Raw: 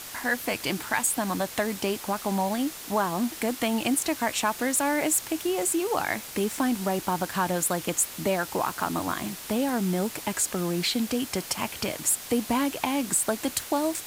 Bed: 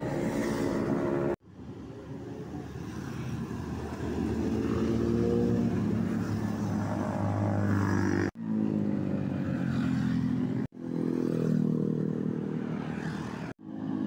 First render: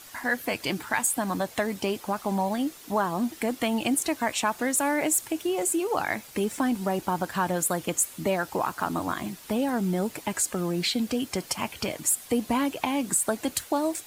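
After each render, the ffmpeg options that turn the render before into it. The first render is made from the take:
-af "afftdn=nr=9:nf=-40"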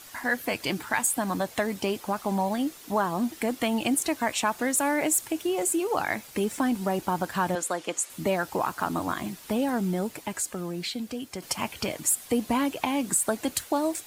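-filter_complex "[0:a]asettb=1/sr,asplit=3[a][b][c];[a]atrim=end=7.554[d];[b]atrim=start=7.55:end=8.1,asetpts=PTS-STARTPTS,afade=t=in:d=0.004:c=qsin,afade=t=out:st=0.546:d=0.004:c=qsin,highpass=340,lowpass=7.3k[e];[c]atrim=start=8.096[f];[d][e]acrossfade=d=0.004:c1=hsin:c2=qsin[g];[g][f]acrossfade=d=0.004:c1=qsin:c2=hsin,asplit=2[h][i];[h]atrim=end=11.42,asetpts=PTS-STARTPTS,afade=t=out:st=9.72:d=1.7:c=qua:silence=0.446684[j];[i]atrim=start=11.42,asetpts=PTS-STARTPTS,afade=t=in:d=0.004:c=hsin:silence=0.446684[k];[j][k]concat=n=2:v=0:a=1"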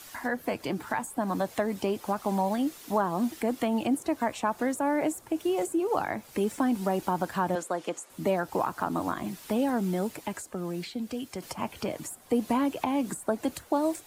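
-filter_complex "[0:a]acrossover=split=150|1300[a][b][c];[a]alimiter=level_in=19.5dB:limit=-24dB:level=0:latency=1,volume=-19.5dB[d];[c]acompressor=threshold=-42dB:ratio=4[e];[d][b][e]amix=inputs=3:normalize=0"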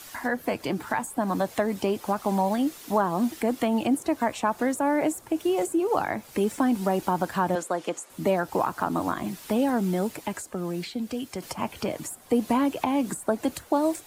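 -af "volume=3dB"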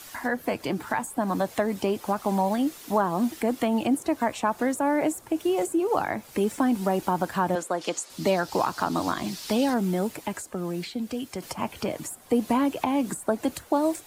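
-filter_complex "[0:a]asettb=1/sr,asplit=3[a][b][c];[a]atrim=end=7.814[d];[b]atrim=start=7.81:end=9.74,asetpts=PTS-STARTPTS,afade=t=in:d=0.004:c=qsin,afade=t=out:st=1.926:d=0.004:c=qsin,equalizer=f=4.7k:t=o:w=1.2:g=12.5[e];[c]atrim=start=9.736[f];[d][e]acrossfade=d=0.004:c1=hsin:c2=qsin[g];[g][f]acrossfade=d=0.004:c1=qsin:c2=hsin"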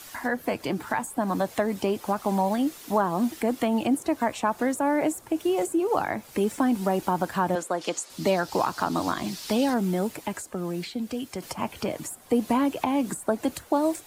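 -af anull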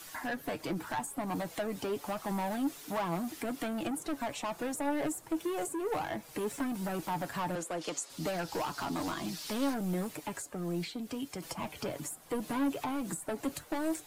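-filter_complex "[0:a]acrossover=split=7100[a][b];[a]asoftclip=type=tanh:threshold=-25.5dB[c];[c][b]amix=inputs=2:normalize=0,flanger=delay=6:depth=1.2:regen=47:speed=1.3:shape=sinusoidal"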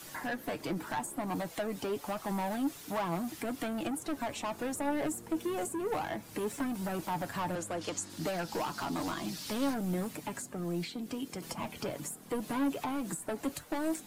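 -filter_complex "[1:a]volume=-24dB[a];[0:a][a]amix=inputs=2:normalize=0"

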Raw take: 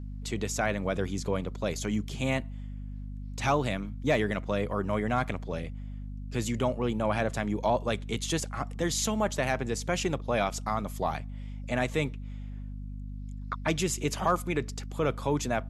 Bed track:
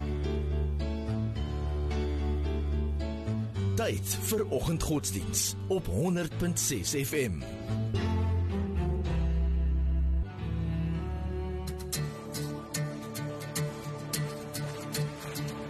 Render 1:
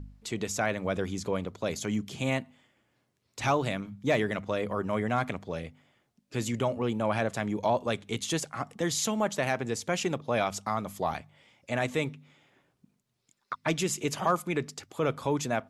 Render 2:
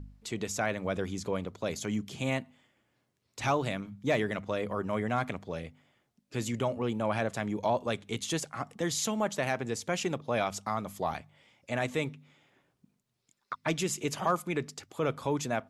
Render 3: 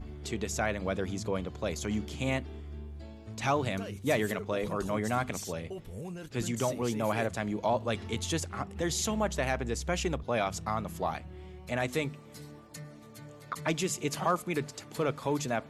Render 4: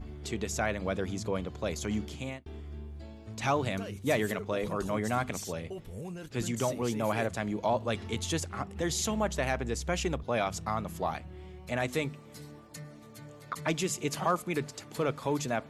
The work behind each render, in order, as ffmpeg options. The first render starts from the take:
-af "bandreject=f=50:t=h:w=4,bandreject=f=100:t=h:w=4,bandreject=f=150:t=h:w=4,bandreject=f=200:t=h:w=4,bandreject=f=250:t=h:w=4"
-af "volume=-2dB"
-filter_complex "[1:a]volume=-12dB[a];[0:a][a]amix=inputs=2:normalize=0"
-filter_complex "[0:a]asplit=2[a][b];[a]atrim=end=2.46,asetpts=PTS-STARTPTS,afade=t=out:st=2.05:d=0.41[c];[b]atrim=start=2.46,asetpts=PTS-STARTPTS,afade=t=in:d=0.004:c=hsin[d];[c][d]concat=n=2:v=0:a=1"

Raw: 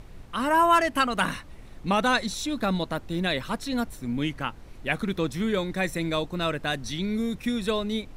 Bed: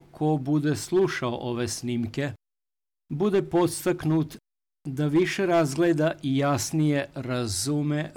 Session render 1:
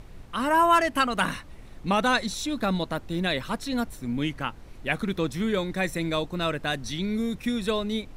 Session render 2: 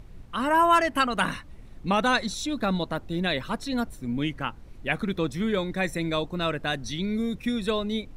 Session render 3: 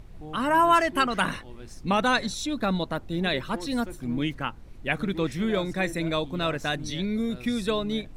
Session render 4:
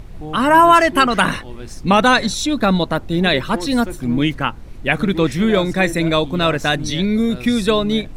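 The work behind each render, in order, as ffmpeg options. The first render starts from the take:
-af anull
-af "afftdn=nr=6:nf=-45"
-filter_complex "[1:a]volume=-17.5dB[a];[0:a][a]amix=inputs=2:normalize=0"
-af "volume=10.5dB,alimiter=limit=-2dB:level=0:latency=1"

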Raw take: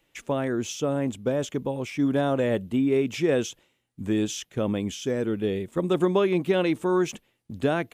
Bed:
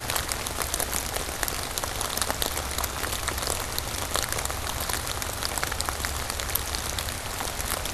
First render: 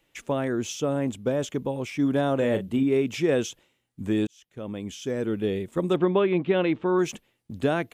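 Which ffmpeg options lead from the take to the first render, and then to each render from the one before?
-filter_complex "[0:a]asettb=1/sr,asplit=3[a][b][c];[a]atrim=end=2.374[d];[b]atrim=start=2.37:end=2.83,asetpts=PTS-STARTPTS,afade=t=in:d=0.004:c=qsin,afade=t=out:st=0.456:d=0.004:c=qsin,asplit=2[e][f];[f]adelay=37,volume=-9dB[g];[e][g]amix=inputs=2:normalize=0,atrim=end_sample=20286[h];[c]atrim=start=2.826[i];[d][h]acrossfade=d=0.004:c1=hsin:c2=qsin[j];[j][i]acrossfade=d=0.004:c1=qsin:c2=hsin,asettb=1/sr,asplit=3[k][l][m];[k]atrim=end=5.964[n];[l]atrim=start=5.96:end=6.99,asetpts=PTS-STARTPTS,afade=t=in:d=0.004:c=qsin,afade=t=out:st=1.026:d=0.004:c=qsin,lowpass=f=3.5k:w=0.5412,lowpass=f=3.5k:w=1.3066[o];[m]atrim=start=6.986[p];[n][o]acrossfade=d=0.004:c1=hsin:c2=qsin[q];[q][p]acrossfade=d=0.004:c1=qsin:c2=hsin,asplit=2[r][s];[r]atrim=end=4.27,asetpts=PTS-STARTPTS,afade=t=out:st=4.266:d=0.004:c=hsin[t];[s]atrim=start=4.27,asetpts=PTS-STARTPTS,afade=t=in:d=1.08[u];[t][u]concat=n=2:v=0:a=1"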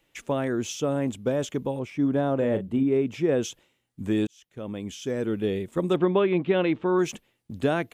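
-filter_complex "[0:a]asettb=1/sr,asplit=3[a][b][c];[a]atrim=end=1.794[d];[b]atrim=start=1.79:end=3.43,asetpts=PTS-STARTPTS,afade=t=in:d=0.004:c=qsin,afade=t=out:st=1.636:d=0.004:c=qsin,highshelf=f=2.1k:g=-11[e];[c]atrim=start=3.426[f];[d][e]acrossfade=d=0.004:c1=hsin:c2=qsin[g];[g][f]acrossfade=d=0.004:c1=qsin:c2=hsin"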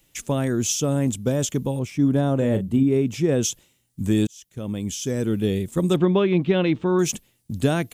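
-af "bass=f=250:g=10,treble=f=4k:g=15"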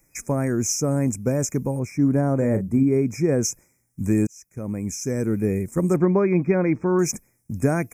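-af "afftfilt=real='re*(1-between(b*sr/4096,2500,5000))':imag='im*(1-between(b*sr/4096,2500,5000))':win_size=4096:overlap=0.75"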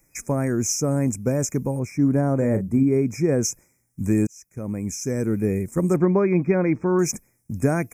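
-af anull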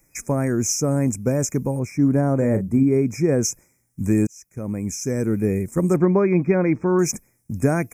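-af "volume=1.5dB"

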